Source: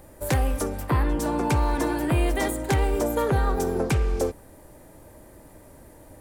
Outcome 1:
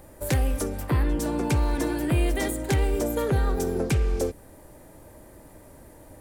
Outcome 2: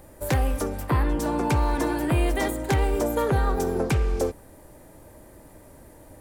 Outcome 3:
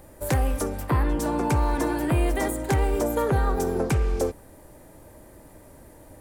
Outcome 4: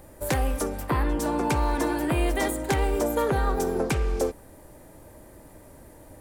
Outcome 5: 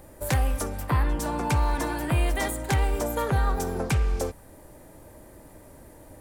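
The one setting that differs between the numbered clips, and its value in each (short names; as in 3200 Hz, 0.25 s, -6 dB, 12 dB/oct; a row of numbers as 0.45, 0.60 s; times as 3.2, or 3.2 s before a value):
dynamic EQ, frequency: 980, 9100, 3500, 100, 360 Hz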